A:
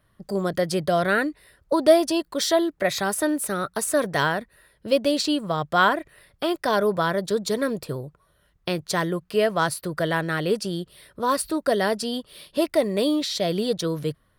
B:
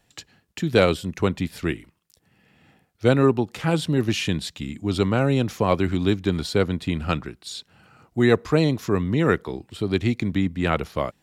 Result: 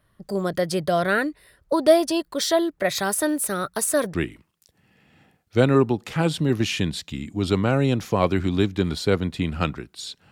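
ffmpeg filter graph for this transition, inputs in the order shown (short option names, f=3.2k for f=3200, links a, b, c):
-filter_complex "[0:a]asettb=1/sr,asplit=3[a][b][c];[a]atrim=end=2.954[d];[b]atrim=start=2.95:end=4.14,asetpts=PTS-STARTPTS,afade=t=in:d=0.004:c=qsin,afade=t=out:st=1.186:d=0.004:c=qsin,highshelf=f=4.6k:g=4[e];[c]atrim=start=4.136[f];[d][e]acrossfade=d=0.004:c1=hsin:c2=qsin[g];[g][f]acrossfade=d=0.004:c1=qsin:c2=hsin,apad=whole_dur=10.31,atrim=end=10.31,atrim=end=4.142[h];[1:a]atrim=start=1.618:end=7.79[i];[h][i]acrossfade=d=0.004:c1=hsin:c2=hsin"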